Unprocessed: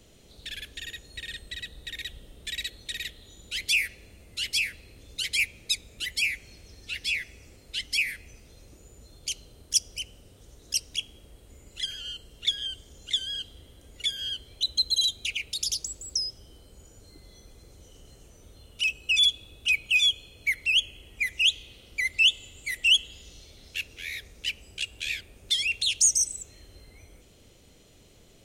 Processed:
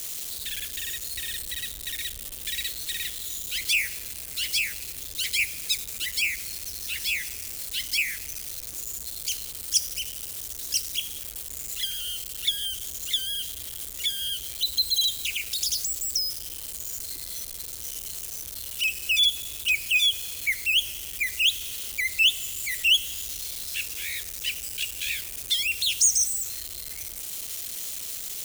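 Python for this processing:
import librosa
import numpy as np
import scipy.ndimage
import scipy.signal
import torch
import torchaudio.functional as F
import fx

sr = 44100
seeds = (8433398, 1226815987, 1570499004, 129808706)

y = x + 0.5 * 10.0 ** (-25.5 / 20.0) * np.diff(np.sign(x), prepend=np.sign(x[:1]))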